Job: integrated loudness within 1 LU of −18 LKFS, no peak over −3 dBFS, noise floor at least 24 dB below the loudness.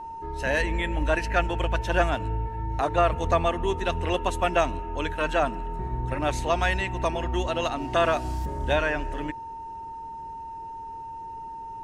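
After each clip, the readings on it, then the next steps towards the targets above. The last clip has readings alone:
interfering tone 910 Hz; level of the tone −35 dBFS; integrated loudness −26.5 LKFS; sample peak −7.5 dBFS; target loudness −18.0 LKFS
→ notch filter 910 Hz, Q 30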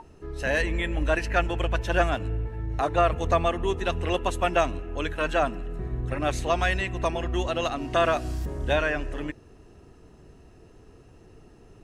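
interfering tone none found; integrated loudness −26.5 LKFS; sample peak −7.5 dBFS; target loudness −18.0 LKFS
→ level +8.5 dB
brickwall limiter −3 dBFS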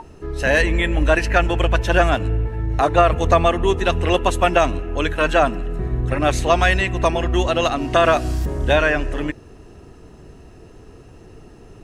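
integrated loudness −18.5 LKFS; sample peak −3.0 dBFS; background noise floor −44 dBFS

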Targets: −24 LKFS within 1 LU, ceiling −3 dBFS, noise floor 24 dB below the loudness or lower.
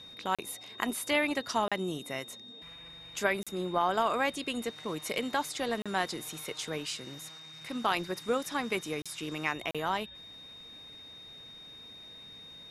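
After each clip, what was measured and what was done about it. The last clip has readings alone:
number of dropouts 6; longest dropout 36 ms; interfering tone 3,700 Hz; level of the tone −47 dBFS; integrated loudness −33.0 LKFS; sample peak −12.5 dBFS; target loudness −24.0 LKFS
→ repair the gap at 0:00.35/0:01.68/0:03.43/0:05.82/0:09.02/0:09.71, 36 ms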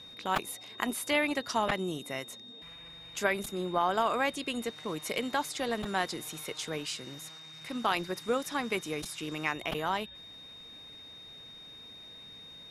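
number of dropouts 0; interfering tone 3,700 Hz; level of the tone −47 dBFS
→ notch filter 3,700 Hz, Q 30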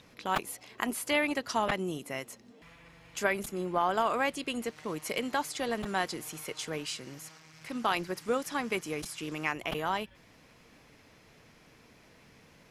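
interfering tone none found; integrated loudness −33.0 LKFS; sample peak −12.5 dBFS; target loudness −24.0 LKFS
→ level +9 dB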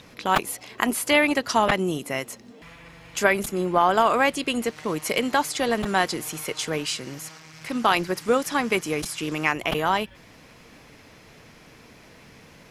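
integrated loudness −24.0 LKFS; sample peak −3.5 dBFS; background noise floor −50 dBFS

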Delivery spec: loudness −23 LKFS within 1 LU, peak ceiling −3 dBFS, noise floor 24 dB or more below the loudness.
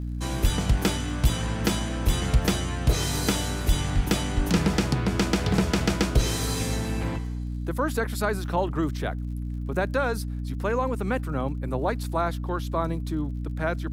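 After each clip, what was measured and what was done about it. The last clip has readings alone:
crackle rate 50 per second; mains hum 60 Hz; hum harmonics up to 300 Hz; level of the hum −28 dBFS; integrated loudness −26.5 LKFS; sample peak −9.0 dBFS; target loudness −23.0 LKFS
→ click removal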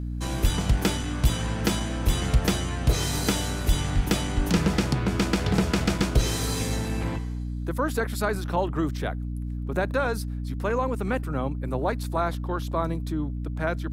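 crackle rate 0.43 per second; mains hum 60 Hz; hum harmonics up to 300 Hz; level of the hum −28 dBFS
→ mains-hum notches 60/120/180/240/300 Hz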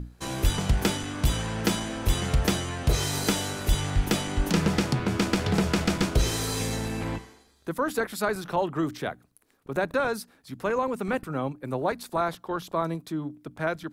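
mains hum none found; integrated loudness −28.0 LKFS; sample peak −10.0 dBFS; target loudness −23.0 LKFS
→ level +5 dB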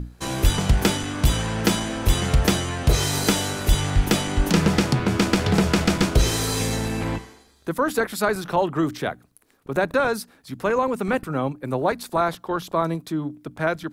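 integrated loudness −23.0 LKFS; sample peak −5.0 dBFS; background noise floor −56 dBFS

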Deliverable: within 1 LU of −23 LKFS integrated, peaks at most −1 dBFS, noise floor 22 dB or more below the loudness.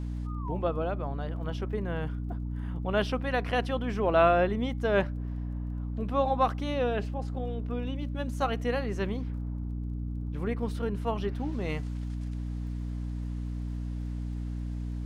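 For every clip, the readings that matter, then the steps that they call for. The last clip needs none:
crackle rate 22 per second; mains hum 60 Hz; hum harmonics up to 300 Hz; level of the hum −31 dBFS; integrated loudness −31.5 LKFS; sample peak −11.5 dBFS; target loudness −23.0 LKFS
→ click removal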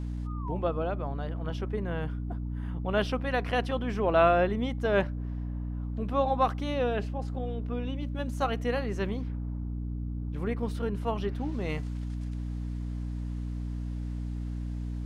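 crackle rate 0.066 per second; mains hum 60 Hz; hum harmonics up to 300 Hz; level of the hum −31 dBFS
→ mains-hum notches 60/120/180/240/300 Hz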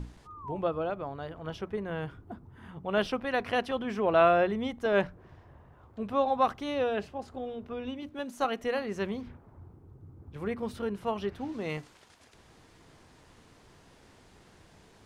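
mains hum none found; integrated loudness −31.5 LKFS; sample peak −12.5 dBFS; target loudness −23.0 LKFS
→ level +8.5 dB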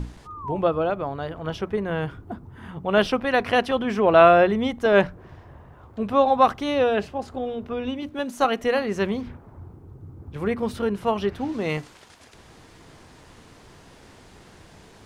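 integrated loudness −23.0 LKFS; sample peak −4.0 dBFS; background noise floor −50 dBFS

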